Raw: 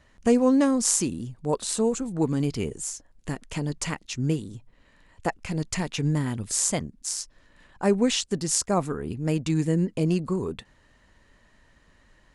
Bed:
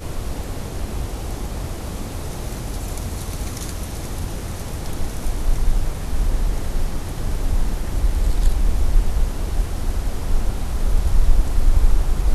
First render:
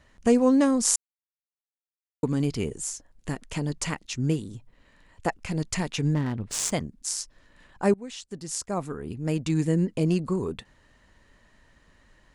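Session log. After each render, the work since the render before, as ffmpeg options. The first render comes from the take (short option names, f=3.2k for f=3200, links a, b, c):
-filter_complex "[0:a]asettb=1/sr,asplit=3[a][b][c];[a]atrim=end=6.144[d];[b]atrim=start=6.14:end=6.72,asetpts=PTS-STARTPTS,afade=t=in:d=0.004:c=qsin,afade=t=out:st=0.576:d=0.004:c=qsin,adynamicsmooth=sensitivity=6:basefreq=1.3k[e];[c]atrim=start=6.716[f];[d][e]acrossfade=d=0.004:c1=hsin:c2=qsin[g];[g][f]acrossfade=d=0.004:c1=qsin:c2=hsin,asplit=4[h][i][j][k];[h]atrim=end=0.96,asetpts=PTS-STARTPTS,afade=t=out:st=0.956:d=0.004:c=hsin[l];[i]atrim=start=0.96:end=2.23,asetpts=PTS-STARTPTS,volume=0[m];[j]atrim=start=2.23:end=7.94,asetpts=PTS-STARTPTS,afade=t=in:d=0.004:c=hsin,afade=t=out:st=5.706:d=0.004:c=hsin:silence=0.0841395[n];[k]atrim=start=7.94,asetpts=PTS-STARTPTS,afade=t=in:d=1.71:silence=0.0841395[o];[l][m][n][o]concat=n=4:v=0:a=1"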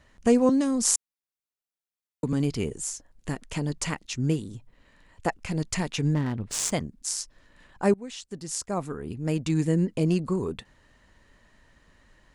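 -filter_complex "[0:a]asettb=1/sr,asplit=3[a][b][c];[a]atrim=end=0.494[d];[b]atrim=start=0.49:end=2.33,asetpts=PTS-STARTPTS,afade=t=in:d=0.004:c=qsin,afade=t=out:st=1.836:d=0.004:c=qsin,acrossover=split=260|3000[e][f][g];[f]acompressor=threshold=-27dB:ratio=6:attack=3.2:release=140:knee=2.83:detection=peak[h];[e][h][g]amix=inputs=3:normalize=0[i];[c]atrim=start=2.326[j];[d][i]acrossfade=d=0.004:c1=hsin:c2=qsin[k];[k][j]acrossfade=d=0.004:c1=qsin:c2=hsin"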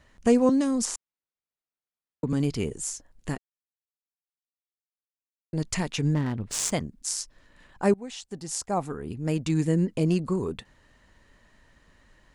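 -filter_complex "[0:a]asettb=1/sr,asplit=3[a][b][c];[a]atrim=end=0.854[d];[b]atrim=start=0.85:end=2.3,asetpts=PTS-STARTPTS,afade=t=in:d=0.004:c=qsin,afade=t=out:st=1.446:d=0.004:c=qsin,aemphasis=mode=reproduction:type=75kf[e];[c]atrim=start=2.296[f];[d][e]acrossfade=d=0.004:c1=hsin:c2=qsin[g];[g][f]acrossfade=d=0.004:c1=qsin:c2=hsin,asettb=1/sr,asplit=3[h][i][j];[h]atrim=end=7.944[k];[i]atrim=start=7.94:end=8.91,asetpts=PTS-STARTPTS,afade=t=in:d=0.004:c=qsin,afade=t=out:st=0.966:d=0.004:c=qsin,equalizer=f=790:t=o:w=0.4:g=7.5[l];[j]atrim=start=8.906[m];[k][l]acrossfade=d=0.004:c1=hsin:c2=qsin[n];[n][m]acrossfade=d=0.004:c1=qsin:c2=hsin,asplit=3[o][p][q];[o]atrim=end=3.38,asetpts=PTS-STARTPTS,afade=t=out:st=3.376:d=0.004:c=hsin[r];[p]atrim=start=3.38:end=5.53,asetpts=PTS-STARTPTS,volume=0[s];[q]atrim=start=5.53,asetpts=PTS-STARTPTS,afade=t=in:d=0.004:c=hsin[t];[r][s][t]concat=n=3:v=0:a=1"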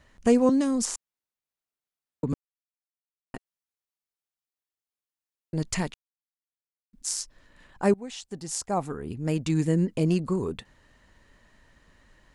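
-filter_complex "[0:a]asplit=5[a][b][c][d][e];[a]atrim=end=2.34,asetpts=PTS-STARTPTS,afade=t=out:st=2.336:d=0.004:c=hsin[f];[b]atrim=start=2.34:end=3.34,asetpts=PTS-STARTPTS,volume=0[g];[c]atrim=start=3.34:end=5.94,asetpts=PTS-STARTPTS,afade=t=in:d=0.004:c=hsin,afade=t=out:st=2.596:d=0.004:c=hsin[h];[d]atrim=start=5.94:end=6.93,asetpts=PTS-STARTPTS,volume=0[i];[e]atrim=start=6.93,asetpts=PTS-STARTPTS,afade=t=in:d=0.004:c=hsin[j];[f][g][h][i][j]concat=n=5:v=0:a=1"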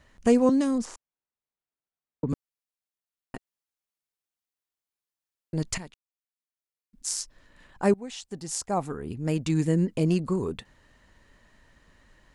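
-filter_complex "[0:a]asettb=1/sr,asplit=3[a][b][c];[a]atrim=end=0.784[d];[b]atrim=start=0.78:end=2.29,asetpts=PTS-STARTPTS,afade=t=in:d=0.004:c=qsin,afade=t=out:st=1.506:d=0.004:c=qsin,lowpass=f=1.5k:p=1[e];[c]atrim=start=2.286[f];[d][e]acrossfade=d=0.004:c1=hsin:c2=qsin[g];[g][f]acrossfade=d=0.004:c1=qsin:c2=hsin,asplit=2[h][i];[h]atrim=end=5.78,asetpts=PTS-STARTPTS,afade=t=out:st=5.776:d=0.004:c=hsin:silence=0.199526[j];[i]atrim=start=5.78,asetpts=PTS-STARTPTS,afade=t=in:d=1.38:silence=0.199526[k];[j][k]concat=n=2:v=0:a=1"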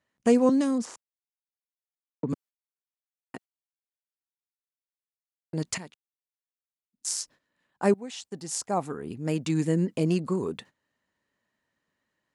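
-af "agate=range=-18dB:threshold=-47dB:ratio=16:detection=peak,highpass=150"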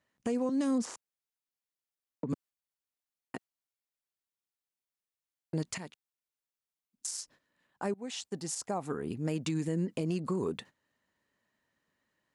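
-af "acompressor=threshold=-25dB:ratio=6,alimiter=limit=-23.5dB:level=0:latency=1:release=131"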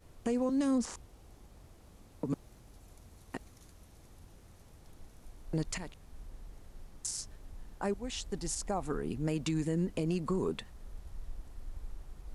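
-filter_complex "[1:a]volume=-28.5dB[a];[0:a][a]amix=inputs=2:normalize=0"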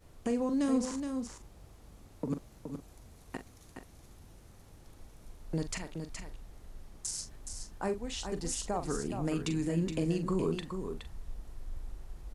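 -filter_complex "[0:a]asplit=2[a][b];[b]adelay=42,volume=-10dB[c];[a][c]amix=inputs=2:normalize=0,aecho=1:1:420:0.447"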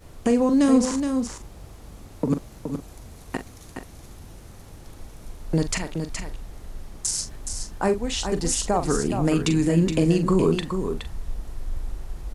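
-af "volume=11.5dB"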